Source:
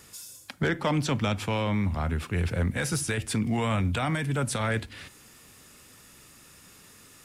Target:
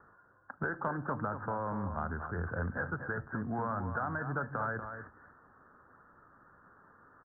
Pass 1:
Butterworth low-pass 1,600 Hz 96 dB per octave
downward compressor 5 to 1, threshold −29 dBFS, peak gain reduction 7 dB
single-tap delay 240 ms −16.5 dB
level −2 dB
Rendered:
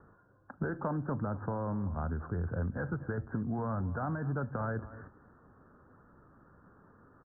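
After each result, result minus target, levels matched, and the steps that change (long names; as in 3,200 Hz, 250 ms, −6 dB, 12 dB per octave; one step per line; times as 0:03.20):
echo-to-direct −8 dB; 1,000 Hz band −5.0 dB
change: single-tap delay 240 ms −8.5 dB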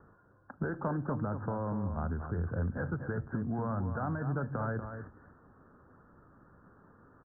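1,000 Hz band −5.0 dB
add after Butterworth low-pass: tilt shelving filter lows −8.5 dB, about 730 Hz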